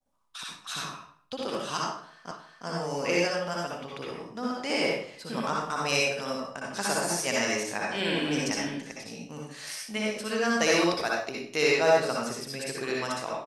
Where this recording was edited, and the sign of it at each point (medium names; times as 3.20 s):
2.31 s: repeat of the last 0.36 s